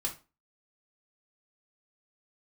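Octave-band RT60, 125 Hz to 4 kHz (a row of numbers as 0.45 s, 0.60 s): 0.30 s, 0.35 s, 0.30 s, 0.30 s, 0.25 s, 0.25 s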